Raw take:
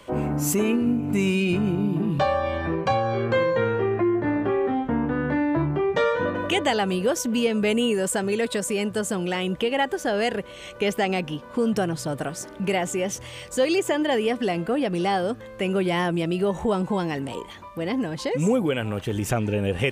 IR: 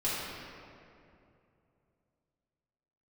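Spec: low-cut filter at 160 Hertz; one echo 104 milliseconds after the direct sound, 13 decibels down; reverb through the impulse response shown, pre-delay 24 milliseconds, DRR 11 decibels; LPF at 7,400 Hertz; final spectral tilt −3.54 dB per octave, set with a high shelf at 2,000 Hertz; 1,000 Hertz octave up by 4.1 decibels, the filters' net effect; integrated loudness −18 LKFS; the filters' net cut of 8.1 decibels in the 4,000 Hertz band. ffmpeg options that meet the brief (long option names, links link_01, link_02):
-filter_complex "[0:a]highpass=160,lowpass=7400,equalizer=frequency=1000:width_type=o:gain=7.5,highshelf=frequency=2000:gain=-8,equalizer=frequency=4000:width_type=o:gain=-4.5,aecho=1:1:104:0.224,asplit=2[link_01][link_02];[1:a]atrim=start_sample=2205,adelay=24[link_03];[link_02][link_03]afir=irnorm=-1:irlink=0,volume=-19dB[link_04];[link_01][link_04]amix=inputs=2:normalize=0,volume=5.5dB"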